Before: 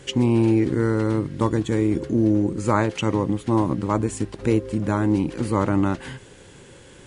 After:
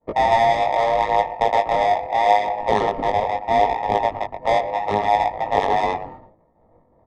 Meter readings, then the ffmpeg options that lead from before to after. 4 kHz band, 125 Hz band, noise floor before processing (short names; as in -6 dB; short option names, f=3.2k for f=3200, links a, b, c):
+4.5 dB, -14.0 dB, -47 dBFS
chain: -filter_complex "[0:a]afftfilt=real='real(if(between(b,1,1008),(2*floor((b-1)/48)+1)*48-b,b),0)':imag='imag(if(between(b,1,1008),(2*floor((b-1)/48)+1)*48-b,b),0)*if(between(b,1,1008),-1,1)':win_size=2048:overlap=0.75,equalizer=f=83:t=o:w=0.6:g=4.5,acrossover=split=210[a][b];[a]acompressor=threshold=-39dB:ratio=20[c];[c][b]amix=inputs=2:normalize=0,acrusher=samples=16:mix=1:aa=0.000001,lowpass=f=2.1k:p=1,asplit=2[d][e];[e]aecho=0:1:118:0.355[f];[d][f]amix=inputs=2:normalize=0,adynamicsmooth=sensitivity=0.5:basefreq=510,flanger=delay=18:depth=4.3:speed=0.76,asuperstop=centerf=1500:order=4:qfactor=4.9,adynamicequalizer=threshold=0.00251:dfrequency=190:dqfactor=3.2:tfrequency=190:tqfactor=3.2:attack=5:release=100:ratio=0.375:range=2.5:mode=cutabove:tftype=bell,agate=range=-33dB:threshold=-49dB:ratio=3:detection=peak,volume=7dB"